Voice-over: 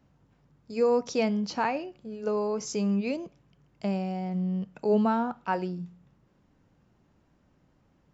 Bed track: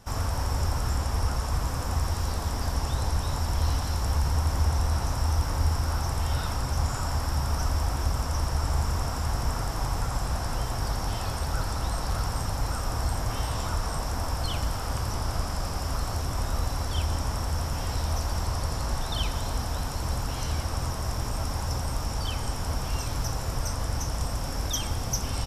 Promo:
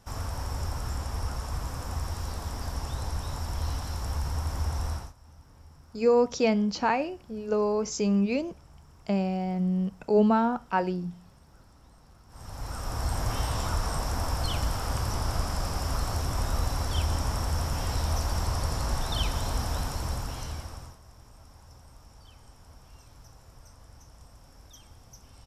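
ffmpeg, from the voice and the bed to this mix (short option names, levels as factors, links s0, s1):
-filter_complex "[0:a]adelay=5250,volume=1.33[s0];[1:a]volume=13.3,afade=t=out:st=4.9:d=0.23:silence=0.0749894,afade=t=in:st=12.28:d=0.98:silence=0.0398107,afade=t=out:st=19.77:d=1.22:silence=0.0749894[s1];[s0][s1]amix=inputs=2:normalize=0"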